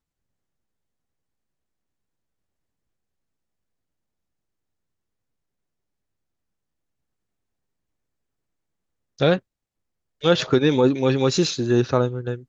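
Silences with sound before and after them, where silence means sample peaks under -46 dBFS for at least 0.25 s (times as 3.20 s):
9.40–10.21 s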